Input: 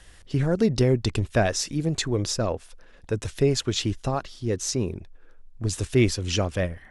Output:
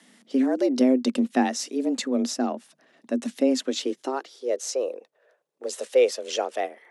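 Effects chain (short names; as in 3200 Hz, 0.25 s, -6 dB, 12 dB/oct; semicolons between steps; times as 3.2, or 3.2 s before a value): high-pass sweep 110 Hz -> 350 Hz, 3.41–4.64; frequency shift +130 Hz; gain -3.5 dB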